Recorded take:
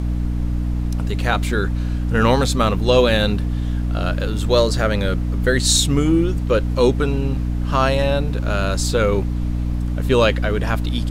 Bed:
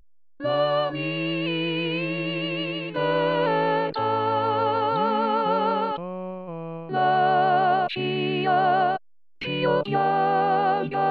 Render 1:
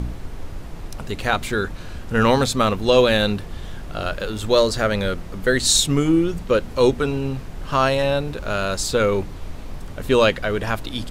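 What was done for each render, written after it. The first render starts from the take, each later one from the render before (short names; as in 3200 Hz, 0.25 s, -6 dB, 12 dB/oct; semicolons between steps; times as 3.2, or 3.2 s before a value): de-hum 60 Hz, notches 5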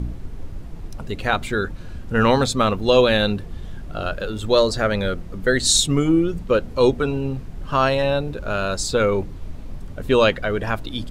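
denoiser 8 dB, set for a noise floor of -34 dBFS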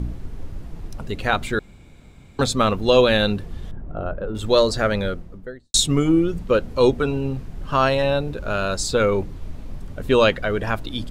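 1.59–2.39 room tone; 3.71–4.35 LPF 1000 Hz; 4.86–5.74 studio fade out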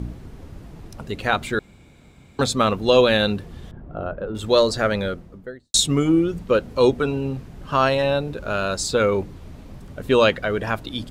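HPF 84 Hz 6 dB/oct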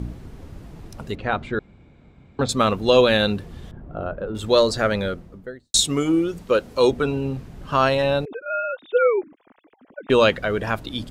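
1.15–2.49 tape spacing loss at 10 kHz 26 dB; 5.84–6.91 tone controls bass -7 dB, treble +4 dB; 8.25–10.1 sine-wave speech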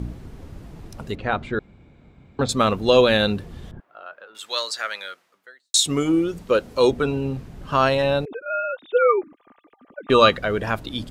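3.8–5.86 HPF 1400 Hz; 9.02–10.37 small resonant body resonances 1200/3900 Hz, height 17 dB, ringing for 90 ms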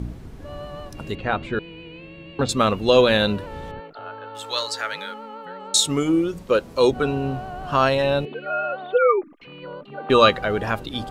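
add bed -14.5 dB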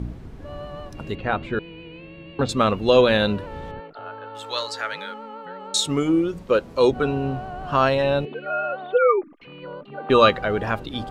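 high shelf 5500 Hz -9 dB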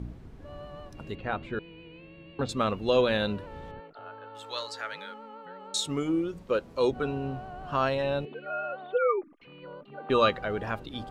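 gain -8 dB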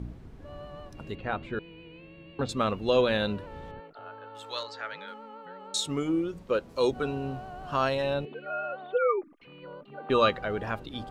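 4.63–5.08 air absorption 120 m; 6.69–8.14 tone controls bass -1 dB, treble +6 dB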